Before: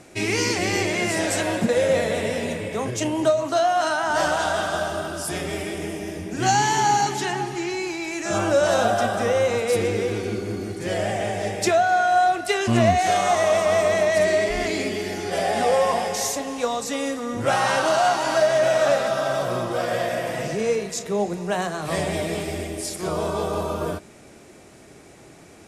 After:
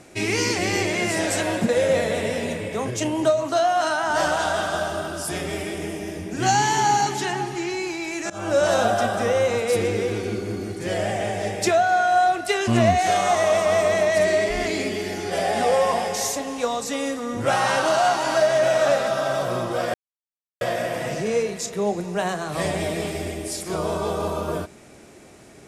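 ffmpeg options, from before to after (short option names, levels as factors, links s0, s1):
-filter_complex "[0:a]asplit=3[s0][s1][s2];[s0]atrim=end=8.3,asetpts=PTS-STARTPTS,afade=t=out:st=8.296:d=0.004:c=hsin:silence=0.0668344[s3];[s1]atrim=start=8.3:end=19.94,asetpts=PTS-STARTPTS,afade=t=in:d=0.29:silence=0.0668344,afade=t=out:st=11.636:d=0.004:c=hsin,apad=pad_dur=0.67[s4];[s2]atrim=start=19.94,asetpts=PTS-STARTPTS,afade=t=in:d=0.004:c=hsin[s5];[s3][s4][s5]concat=n=3:v=0:a=1"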